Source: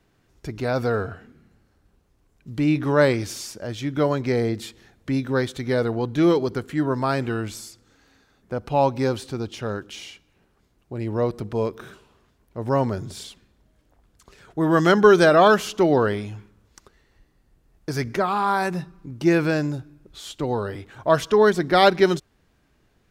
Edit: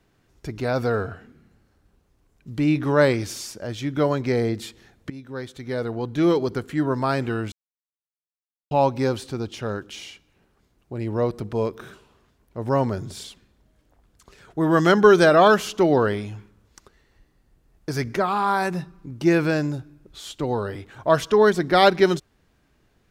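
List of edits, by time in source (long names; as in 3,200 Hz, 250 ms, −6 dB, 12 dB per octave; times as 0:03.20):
0:05.10–0:06.48: fade in, from −18 dB
0:07.52–0:08.71: silence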